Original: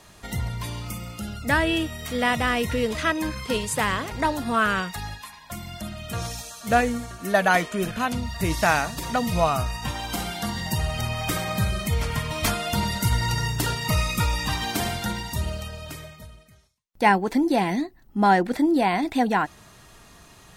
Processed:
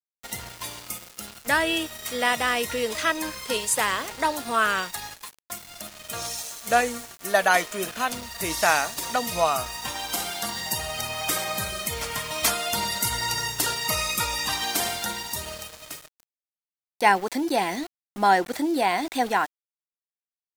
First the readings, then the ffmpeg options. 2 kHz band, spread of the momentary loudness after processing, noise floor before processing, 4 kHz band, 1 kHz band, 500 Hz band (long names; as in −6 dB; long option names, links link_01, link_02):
0.0 dB, 14 LU, −51 dBFS, +2.5 dB, 0.0 dB, −1.5 dB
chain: -af "bass=frequency=250:gain=-15,treble=frequency=4000:gain=6,aeval=exprs='val(0)*gte(abs(val(0)),0.0168)':channel_layout=same"